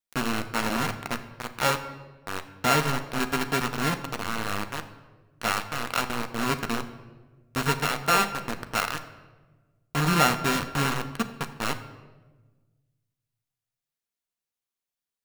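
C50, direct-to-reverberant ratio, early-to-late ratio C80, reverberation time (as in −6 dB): 12.0 dB, 7.0 dB, 13.5 dB, 1.3 s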